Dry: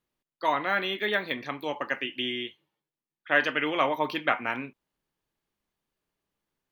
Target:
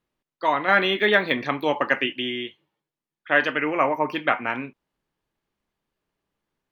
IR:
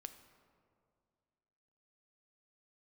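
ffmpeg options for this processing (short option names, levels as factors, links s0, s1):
-filter_complex "[0:a]aemphasis=mode=reproduction:type=cd,asettb=1/sr,asplit=3[s0][s1][s2];[s0]atrim=end=0.684[s3];[s1]atrim=start=0.68:end=2.13,asetpts=PTS-STARTPTS,afade=t=in:d=0.004:c=qsin,afade=t=out:st=1.446:d=0.004:c=qsin,acontrast=29[s4];[s2]atrim=start=2.126[s5];[s3][s4]acrossfade=d=0.004:c1=hsin:c2=qsin[s6];[s6][s5]acrossfade=d=0.004:c1=qsin:c2=hsin,asplit=3[s7][s8][s9];[s7]afade=t=out:st=3.57:d=0.02[s10];[s8]asuperstop=centerf=3700:order=8:qfactor=1.7,afade=t=in:st=3.57:d=0.02,afade=t=out:st=4.12:d=0.02[s11];[s9]afade=t=in:st=4.12:d=0.02[s12];[s10][s11][s12]amix=inputs=3:normalize=0,volume=1.58"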